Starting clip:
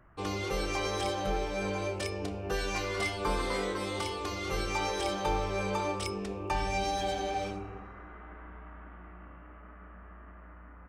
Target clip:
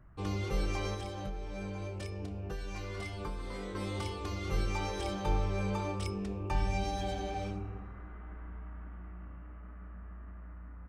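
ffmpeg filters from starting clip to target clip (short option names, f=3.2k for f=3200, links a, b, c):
-filter_complex "[0:a]bass=f=250:g=11,treble=f=4k:g=-1,asettb=1/sr,asplit=3[a][b][c];[a]atrim=end=0.934[d];[b]atrim=start=0.93:end=3.75,asetpts=PTS-STARTPTS,afade=t=in:d=0.004:c=qsin,afade=t=out:st=2.816:d=0.004:c=qsin,acompressor=threshold=-30dB:ratio=6[e];[c]atrim=start=3.746[f];[d][e]acrossfade=d=0.004:c1=hsin:c2=qsin[g];[g][f]acrossfade=d=0.004:c1=qsin:c2=hsin,volume=-6dB"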